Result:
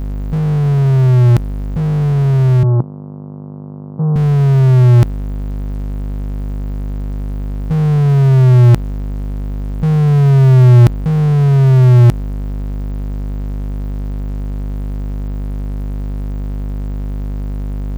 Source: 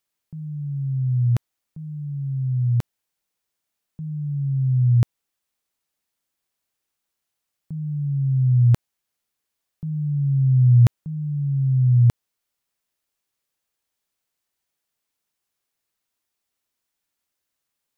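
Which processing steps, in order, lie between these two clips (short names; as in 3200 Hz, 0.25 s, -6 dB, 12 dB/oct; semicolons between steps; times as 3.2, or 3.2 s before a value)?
hum 50 Hz, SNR 20 dB; power-law curve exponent 0.5; 2.63–4.16 elliptic band-pass 130–1100 Hz, stop band 40 dB; gain +6 dB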